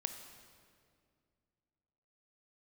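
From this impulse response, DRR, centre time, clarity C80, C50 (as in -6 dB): 7.0 dB, 28 ms, 9.0 dB, 8.0 dB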